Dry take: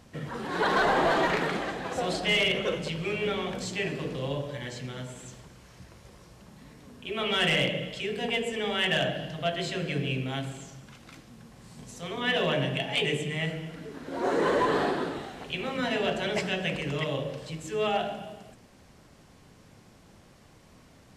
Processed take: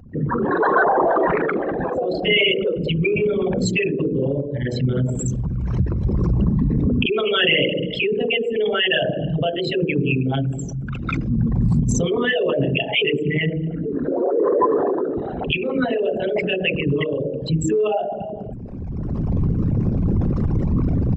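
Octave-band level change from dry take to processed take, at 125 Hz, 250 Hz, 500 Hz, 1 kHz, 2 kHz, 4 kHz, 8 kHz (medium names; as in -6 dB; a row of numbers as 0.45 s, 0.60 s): +15.0 dB, +12.5 dB, +10.0 dB, +6.0 dB, +6.5 dB, +6.5 dB, +7.5 dB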